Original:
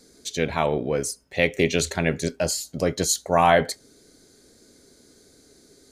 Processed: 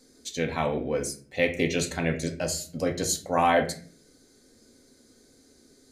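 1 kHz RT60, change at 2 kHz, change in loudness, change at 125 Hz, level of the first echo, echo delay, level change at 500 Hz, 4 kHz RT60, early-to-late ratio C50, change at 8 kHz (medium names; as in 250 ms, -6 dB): 0.40 s, -4.0 dB, -4.0 dB, -4.0 dB, no echo, no echo, -4.5 dB, 0.30 s, 12.0 dB, -4.5 dB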